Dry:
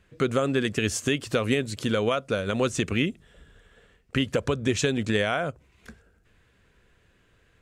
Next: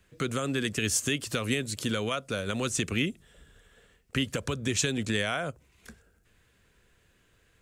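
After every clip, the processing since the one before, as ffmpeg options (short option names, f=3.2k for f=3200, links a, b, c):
-filter_complex "[0:a]highshelf=f=5.7k:g=11.5,acrossover=split=290|1000|2100[a][b][c][d];[b]alimiter=level_in=2.5dB:limit=-24dB:level=0:latency=1,volume=-2.5dB[e];[a][e][c][d]amix=inputs=4:normalize=0,volume=-3.5dB"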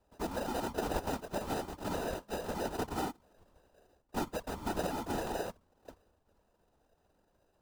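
-af "acrusher=samples=40:mix=1:aa=0.000001,afftfilt=real='hypot(re,im)*cos(2*PI*random(0))':imag='hypot(re,im)*sin(2*PI*random(1))':win_size=512:overlap=0.75,equalizer=f=125:t=o:w=1:g=-9,equalizer=f=1k:t=o:w=1:g=8,equalizer=f=2k:t=o:w=1:g=-6"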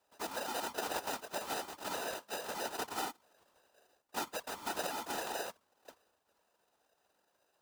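-af "highpass=f=1.4k:p=1,volume=4.5dB"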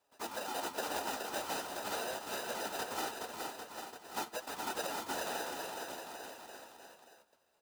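-af "flanger=delay=6.7:depth=8.5:regen=55:speed=0.44:shape=triangular,aecho=1:1:420|798|1138|1444|1720:0.631|0.398|0.251|0.158|0.1,volume=3dB"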